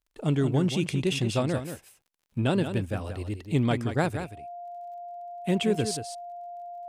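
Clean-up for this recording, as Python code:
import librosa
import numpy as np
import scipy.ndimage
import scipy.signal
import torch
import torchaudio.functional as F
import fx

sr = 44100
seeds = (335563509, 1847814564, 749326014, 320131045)

y = fx.fix_declick_ar(x, sr, threshold=6.5)
y = fx.notch(y, sr, hz=700.0, q=30.0)
y = fx.fix_echo_inverse(y, sr, delay_ms=180, level_db=-9.0)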